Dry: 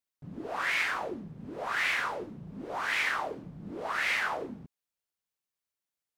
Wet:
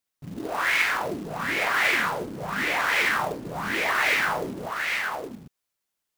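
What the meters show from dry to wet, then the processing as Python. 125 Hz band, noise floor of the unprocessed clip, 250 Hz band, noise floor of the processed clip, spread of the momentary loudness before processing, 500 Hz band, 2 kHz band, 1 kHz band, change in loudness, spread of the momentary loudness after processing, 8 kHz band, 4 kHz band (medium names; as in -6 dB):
+7.5 dB, under -85 dBFS, +7.5 dB, -83 dBFS, 15 LU, +7.5 dB, +7.5 dB, +7.5 dB, +6.5 dB, 11 LU, +9.5 dB, +7.5 dB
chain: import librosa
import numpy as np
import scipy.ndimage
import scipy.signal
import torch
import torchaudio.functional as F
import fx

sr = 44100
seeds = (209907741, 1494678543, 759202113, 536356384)

y = fx.echo_multitap(x, sr, ms=(47, 50, 57, 816), db=(-8.5, -17.5, -12.0, -3.5))
y = fx.quant_float(y, sr, bits=2)
y = y * 10.0 ** (5.5 / 20.0)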